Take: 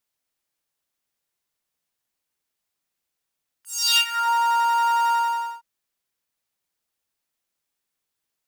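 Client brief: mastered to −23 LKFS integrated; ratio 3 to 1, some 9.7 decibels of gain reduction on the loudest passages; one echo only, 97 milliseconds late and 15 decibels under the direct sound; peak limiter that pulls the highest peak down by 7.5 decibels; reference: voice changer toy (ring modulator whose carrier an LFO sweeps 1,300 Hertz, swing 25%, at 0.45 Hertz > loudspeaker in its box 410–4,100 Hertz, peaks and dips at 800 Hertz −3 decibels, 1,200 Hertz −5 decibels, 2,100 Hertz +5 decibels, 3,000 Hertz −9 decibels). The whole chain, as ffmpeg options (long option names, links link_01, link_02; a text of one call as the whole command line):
ffmpeg -i in.wav -af "acompressor=threshold=-28dB:ratio=3,alimiter=level_in=1dB:limit=-24dB:level=0:latency=1,volume=-1dB,aecho=1:1:97:0.178,aeval=exprs='val(0)*sin(2*PI*1300*n/s+1300*0.25/0.45*sin(2*PI*0.45*n/s))':channel_layout=same,highpass=410,equalizer=frequency=800:width_type=q:width=4:gain=-3,equalizer=frequency=1200:width_type=q:width=4:gain=-5,equalizer=frequency=2100:width_type=q:width=4:gain=5,equalizer=frequency=3000:width_type=q:width=4:gain=-9,lowpass=frequency=4100:width=0.5412,lowpass=frequency=4100:width=1.3066,volume=12.5dB" out.wav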